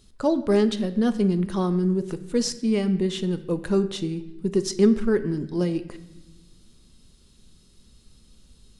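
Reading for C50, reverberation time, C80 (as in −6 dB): 14.0 dB, 1.0 s, 16.0 dB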